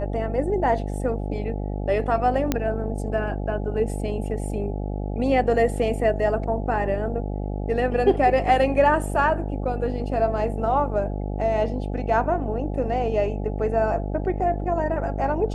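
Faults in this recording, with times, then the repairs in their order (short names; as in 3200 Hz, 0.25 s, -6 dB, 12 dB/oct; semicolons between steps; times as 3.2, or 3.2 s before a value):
buzz 50 Hz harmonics 17 -28 dBFS
2.52 pop -7 dBFS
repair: de-click; de-hum 50 Hz, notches 17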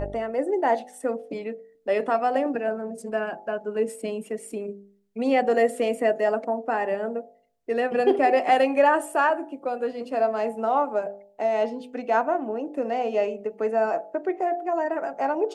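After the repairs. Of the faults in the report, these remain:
none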